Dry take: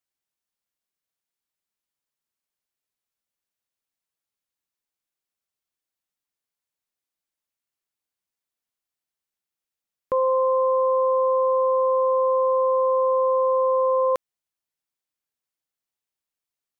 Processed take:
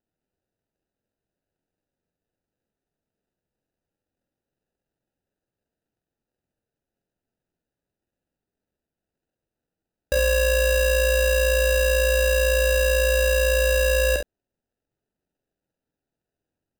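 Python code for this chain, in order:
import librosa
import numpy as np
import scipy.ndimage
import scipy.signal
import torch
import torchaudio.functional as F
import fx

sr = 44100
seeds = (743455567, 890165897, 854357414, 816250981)

y = fx.sample_hold(x, sr, seeds[0], rate_hz=1100.0, jitter_pct=0)
y = fx.room_early_taps(y, sr, ms=(46, 68), db=(-5.0, -9.0))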